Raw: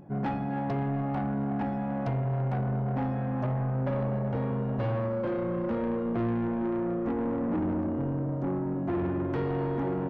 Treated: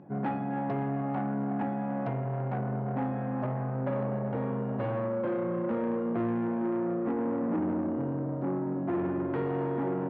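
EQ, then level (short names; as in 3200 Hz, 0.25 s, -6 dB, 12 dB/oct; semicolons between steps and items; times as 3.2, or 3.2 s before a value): BPF 150–2500 Hz; 0.0 dB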